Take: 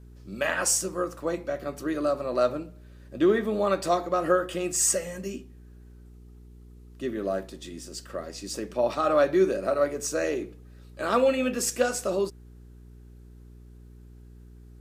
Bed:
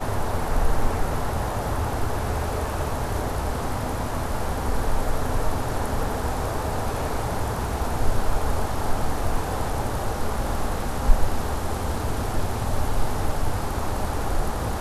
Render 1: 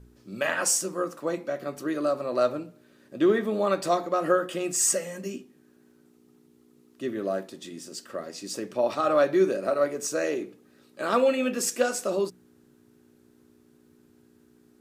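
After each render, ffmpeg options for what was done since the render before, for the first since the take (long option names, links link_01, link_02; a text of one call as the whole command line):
ffmpeg -i in.wav -af "bandreject=frequency=60:width_type=h:width=4,bandreject=frequency=120:width_type=h:width=4,bandreject=frequency=180:width_type=h:width=4" out.wav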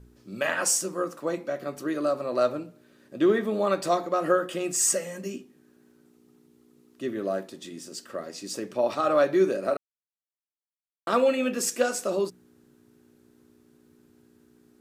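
ffmpeg -i in.wav -filter_complex "[0:a]asplit=3[link_01][link_02][link_03];[link_01]atrim=end=9.77,asetpts=PTS-STARTPTS,afade=type=out:start_time=9.766:duration=0.004:curve=hsin[link_04];[link_02]atrim=start=9.77:end=11.07,asetpts=PTS-STARTPTS,volume=0[link_05];[link_03]atrim=start=11.07,asetpts=PTS-STARTPTS,afade=type=in:duration=0.004:curve=hsin[link_06];[link_04][link_05][link_06]concat=n=3:v=0:a=1" out.wav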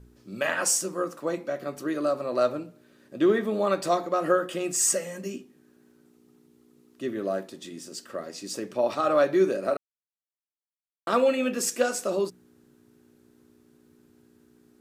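ffmpeg -i in.wav -af anull out.wav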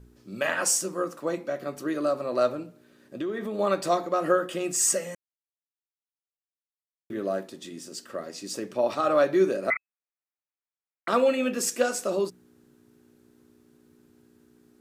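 ffmpeg -i in.wav -filter_complex "[0:a]asettb=1/sr,asplit=3[link_01][link_02][link_03];[link_01]atrim=end=2.524[link_04];[link_02]atrim=start=2.52:end=3.59,asetpts=PTS-STARTPTS,afade=type=in:duration=0.004:curve=qsin,afade=type=out:start_time=1.066:duration=0.004:curve=qsin,acompressor=threshold=-28dB:ratio=6:attack=3.2:release=140:knee=1:detection=peak[link_05];[link_03]atrim=start=3.586[link_06];[link_04][link_05]acrossfade=duration=0.004:curve1=hsin:curve2=qsin[link_07];[link_07][link_06]acrossfade=duration=0.004:curve1=qsin:curve2=hsin,asettb=1/sr,asplit=3[link_08][link_09][link_10];[link_08]atrim=end=9.704[link_11];[link_09]atrim=start=9.7:end=11.08,asetpts=PTS-STARTPTS,afade=type=in:duration=0.004:curve=qsin,afade=type=out:start_time=1.376:duration=0.004:curve=qsin,lowpass=frequency=2200:width_type=q:width=0.5098,lowpass=frequency=2200:width_type=q:width=0.6013,lowpass=frequency=2200:width_type=q:width=0.9,lowpass=frequency=2200:width_type=q:width=2.563,afreqshift=-2600[link_12];[link_10]atrim=start=11.076[link_13];[link_11][link_12]acrossfade=duration=0.004:curve1=hsin:curve2=qsin[link_14];[link_14][link_13]acrossfade=duration=0.004:curve1=qsin:curve2=hsin,asplit=3[link_15][link_16][link_17];[link_15]atrim=end=5.15,asetpts=PTS-STARTPTS,afade=type=out:start_time=5.146:duration=0.004:curve=hsin[link_18];[link_16]atrim=start=5.15:end=7.1,asetpts=PTS-STARTPTS,volume=0[link_19];[link_17]atrim=start=7.1,asetpts=PTS-STARTPTS,afade=type=in:duration=0.004:curve=hsin[link_20];[link_18][link_19][link_20]concat=n=3:v=0:a=1" out.wav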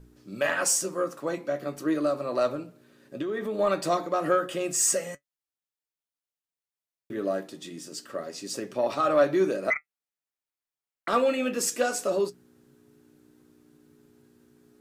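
ffmpeg -i in.wav -filter_complex "[0:a]flanger=delay=6.3:depth=1.3:regen=61:speed=0.52:shape=triangular,asplit=2[link_01][link_02];[link_02]asoftclip=type=tanh:threshold=-21.5dB,volume=-3dB[link_03];[link_01][link_03]amix=inputs=2:normalize=0" out.wav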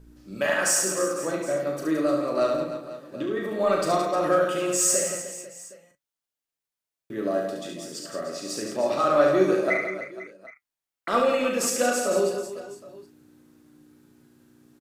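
ffmpeg -i in.wav -filter_complex "[0:a]asplit=2[link_01][link_02];[link_02]adelay=37,volume=-7dB[link_03];[link_01][link_03]amix=inputs=2:normalize=0,aecho=1:1:70|168|305.2|497.3|766.2:0.631|0.398|0.251|0.158|0.1" out.wav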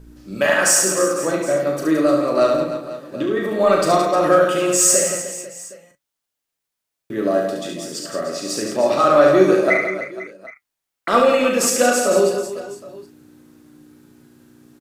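ffmpeg -i in.wav -af "volume=7.5dB,alimiter=limit=-2dB:level=0:latency=1" out.wav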